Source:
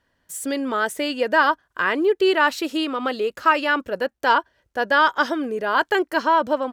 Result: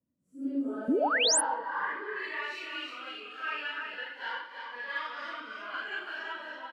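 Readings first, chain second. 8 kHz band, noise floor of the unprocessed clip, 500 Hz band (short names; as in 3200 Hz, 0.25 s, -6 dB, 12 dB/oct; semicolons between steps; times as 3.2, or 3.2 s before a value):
+4.5 dB, -71 dBFS, -15.0 dB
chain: phase scrambler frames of 0.2 s; HPF 89 Hz; low shelf 200 Hz +8.5 dB; in parallel at -9 dB: soft clip -19.5 dBFS, distortion -10 dB; on the sum: tapped delay 0.183/0.331/0.549 s -13.5/-5/-14.5 dB; band-pass sweep 220 Hz -> 2200 Hz, 0.17–2.46; painted sound rise, 0.88–1.41, 220–11000 Hz -17 dBFS; cascading phaser rising 0.38 Hz; gain -7.5 dB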